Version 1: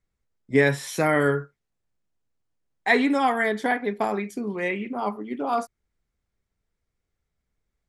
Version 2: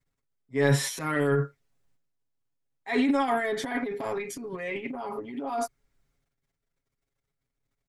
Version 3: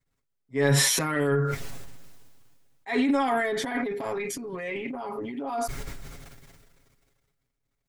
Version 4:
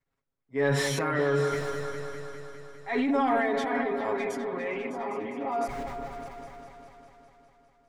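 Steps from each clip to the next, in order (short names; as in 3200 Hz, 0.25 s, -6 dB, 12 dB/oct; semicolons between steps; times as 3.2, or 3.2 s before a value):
transient shaper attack -9 dB, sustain +12 dB; comb 7.3 ms, depth 83%; gain -8 dB
sustainer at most 28 dB/s
overdrive pedal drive 11 dB, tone 1100 Hz, clips at -9.5 dBFS; repeats that get brighter 0.202 s, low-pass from 750 Hz, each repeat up 2 oct, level -6 dB; gain -2 dB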